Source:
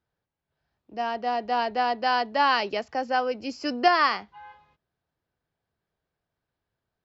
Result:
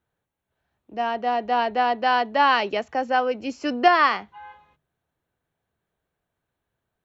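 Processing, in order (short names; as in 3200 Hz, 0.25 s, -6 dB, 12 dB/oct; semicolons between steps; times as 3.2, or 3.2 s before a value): bell 4900 Hz -14 dB 0.25 oct; notches 50/100/150 Hz; gain +3.5 dB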